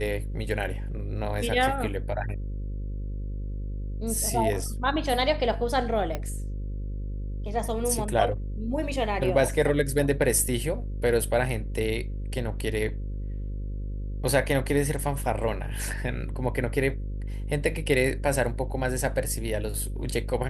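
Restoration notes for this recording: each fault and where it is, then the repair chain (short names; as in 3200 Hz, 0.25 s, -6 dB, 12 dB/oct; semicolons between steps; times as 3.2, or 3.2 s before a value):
buzz 50 Hz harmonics 11 -32 dBFS
6.15 pop -16 dBFS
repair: de-click; de-hum 50 Hz, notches 11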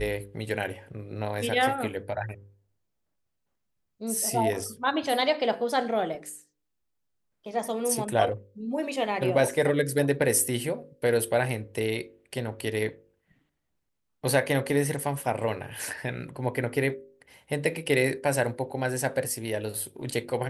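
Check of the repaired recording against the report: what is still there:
6.15 pop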